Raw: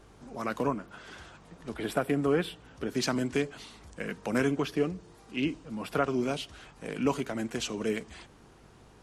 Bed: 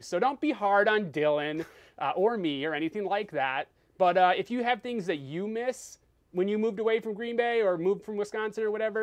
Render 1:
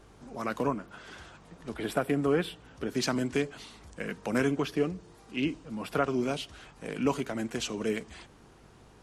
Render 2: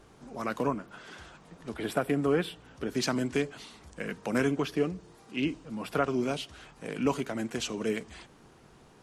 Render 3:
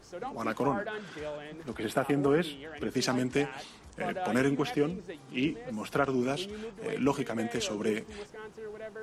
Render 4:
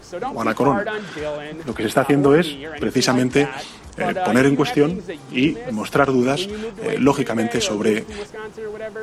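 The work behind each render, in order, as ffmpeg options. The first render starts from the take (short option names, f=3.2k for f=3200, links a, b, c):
-af anull
-af "bandreject=f=50:t=h:w=4,bandreject=f=100:t=h:w=4"
-filter_complex "[1:a]volume=-13dB[a];[0:a][a]amix=inputs=2:normalize=0"
-af "volume=12dB"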